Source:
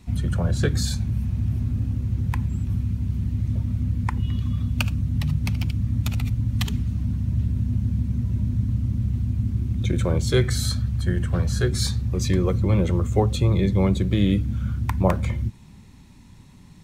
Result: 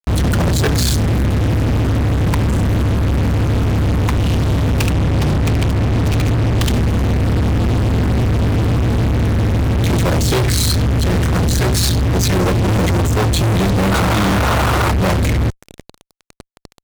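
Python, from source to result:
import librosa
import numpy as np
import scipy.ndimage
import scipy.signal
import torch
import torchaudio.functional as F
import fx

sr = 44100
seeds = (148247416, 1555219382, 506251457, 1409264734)

y = fx.lowpass(x, sr, hz=3600.0, slope=6, at=(4.9, 6.63))
y = fx.spec_paint(y, sr, seeds[0], shape='noise', start_s=13.91, length_s=1.01, low_hz=290.0, high_hz=1500.0, level_db=-27.0)
y = fx.fuzz(y, sr, gain_db=42.0, gate_db=-39.0)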